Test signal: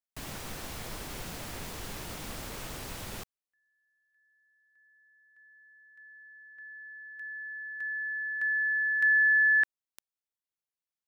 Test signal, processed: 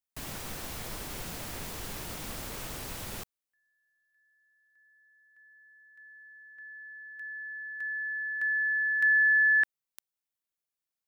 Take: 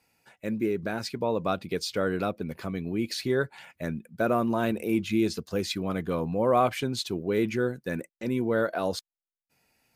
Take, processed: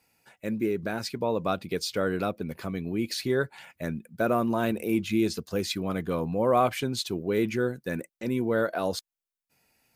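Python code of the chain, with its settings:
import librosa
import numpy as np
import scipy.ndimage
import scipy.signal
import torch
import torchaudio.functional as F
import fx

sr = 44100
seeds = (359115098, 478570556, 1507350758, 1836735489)

y = fx.high_shelf(x, sr, hz=9700.0, db=5.0)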